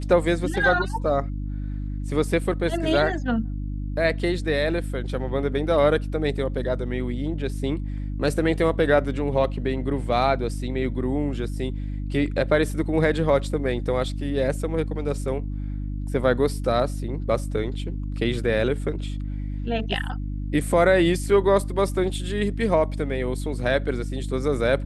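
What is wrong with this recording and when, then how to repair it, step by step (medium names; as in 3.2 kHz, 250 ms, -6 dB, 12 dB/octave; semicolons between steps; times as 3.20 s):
hum 50 Hz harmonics 6 -29 dBFS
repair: de-hum 50 Hz, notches 6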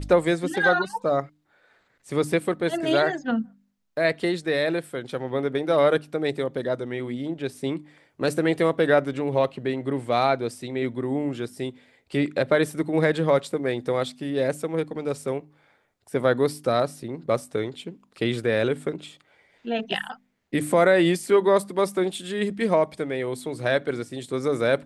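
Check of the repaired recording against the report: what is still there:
nothing left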